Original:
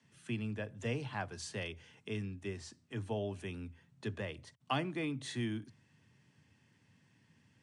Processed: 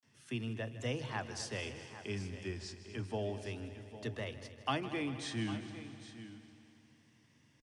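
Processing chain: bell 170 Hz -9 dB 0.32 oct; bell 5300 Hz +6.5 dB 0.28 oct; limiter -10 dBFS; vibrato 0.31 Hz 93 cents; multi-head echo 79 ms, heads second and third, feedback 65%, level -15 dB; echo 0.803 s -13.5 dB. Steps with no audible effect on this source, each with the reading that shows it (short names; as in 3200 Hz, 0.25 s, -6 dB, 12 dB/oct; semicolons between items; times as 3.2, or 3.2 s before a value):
limiter -10 dBFS: input peak -18.5 dBFS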